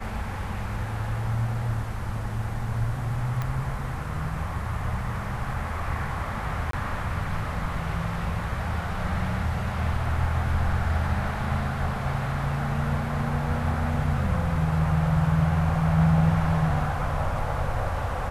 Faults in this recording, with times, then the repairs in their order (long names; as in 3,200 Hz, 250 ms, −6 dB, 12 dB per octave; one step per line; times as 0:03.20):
0:03.42: click −17 dBFS
0:06.71–0:06.73: drop-out 23 ms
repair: click removal
repair the gap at 0:06.71, 23 ms